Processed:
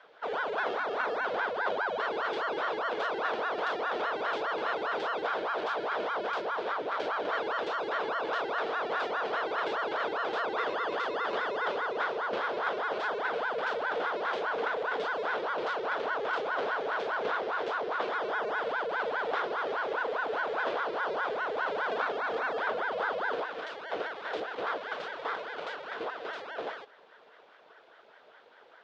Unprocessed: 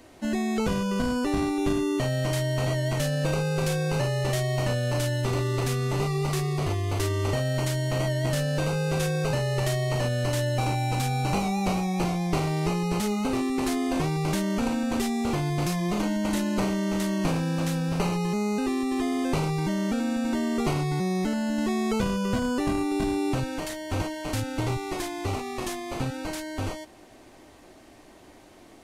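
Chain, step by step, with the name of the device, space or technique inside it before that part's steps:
voice changer toy (ring modulator whose carrier an LFO sweeps 740 Hz, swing 75%, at 4.9 Hz; loudspeaker in its box 420–4,200 Hz, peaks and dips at 450 Hz +9 dB, 650 Hz +4 dB, 1,500 Hz +6 dB, 3,400 Hz +5 dB)
level −5 dB

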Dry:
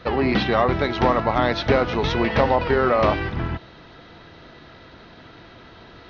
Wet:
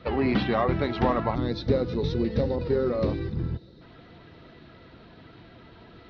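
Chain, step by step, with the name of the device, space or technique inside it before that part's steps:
0:02.02–0:02.58: dynamic equaliser 970 Hz, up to −6 dB, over −33 dBFS, Q 1.9
0:01.35–0:03.81: gain on a spectral selection 560–3,500 Hz −12 dB
clip after many re-uploads (low-pass filter 5,300 Hz 24 dB per octave; spectral magnitudes quantised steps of 15 dB)
parametric band 140 Hz +5 dB 3 octaves
level −6.5 dB

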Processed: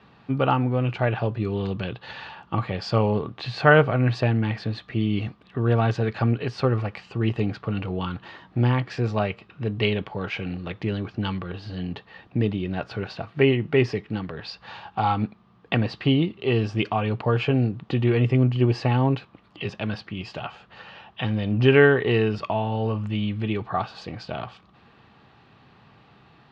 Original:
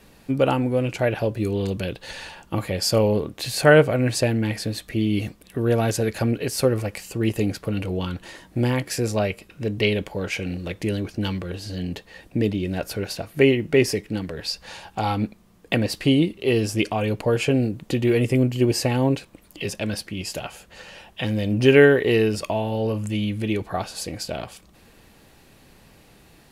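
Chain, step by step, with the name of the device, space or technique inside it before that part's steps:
guitar cabinet (loudspeaker in its box 93–3,800 Hz, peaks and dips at 120 Hz +6 dB, 310 Hz −4 dB, 540 Hz −6 dB, 810 Hz +4 dB, 1,200 Hz +8 dB, 2,200 Hz −3 dB)
level −1 dB

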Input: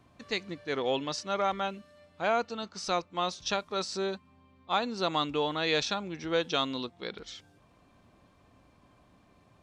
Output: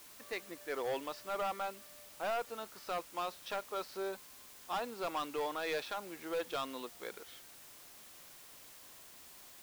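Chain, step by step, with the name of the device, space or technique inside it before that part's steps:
aircraft radio (band-pass filter 400–2,300 Hz; hard clipping −28 dBFS, distortion −9 dB; white noise bed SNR 14 dB)
level −3.5 dB

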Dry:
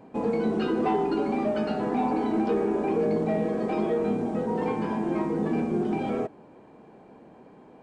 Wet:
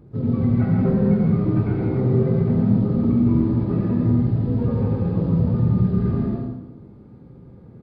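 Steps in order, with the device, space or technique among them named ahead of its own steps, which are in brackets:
monster voice (pitch shifter −11.5 semitones; low-shelf EQ 210 Hz +6.5 dB; single-tap delay 83 ms −6.5 dB; convolution reverb RT60 0.95 s, pre-delay 109 ms, DRR −1 dB)

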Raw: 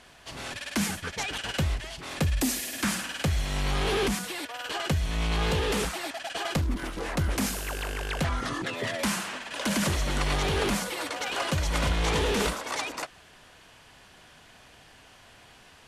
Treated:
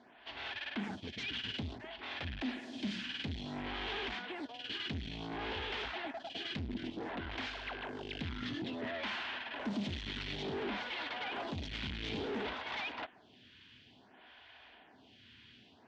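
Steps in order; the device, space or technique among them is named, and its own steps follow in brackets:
vibe pedal into a guitar amplifier (phaser with staggered stages 0.57 Hz; tube saturation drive 35 dB, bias 0.55; loudspeaker in its box 86–4,000 Hz, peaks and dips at 160 Hz −8 dB, 240 Hz +6 dB, 520 Hz −8 dB, 1,200 Hz −7 dB, 3,300 Hz +4 dB)
level +1 dB

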